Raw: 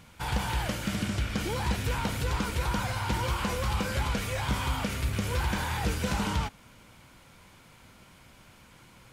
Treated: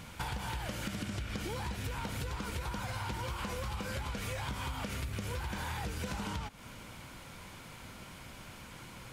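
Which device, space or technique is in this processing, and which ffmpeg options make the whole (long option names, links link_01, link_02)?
serial compression, leveller first: -af "acompressor=threshold=-31dB:ratio=3,acompressor=threshold=-42dB:ratio=4,volume=5.5dB"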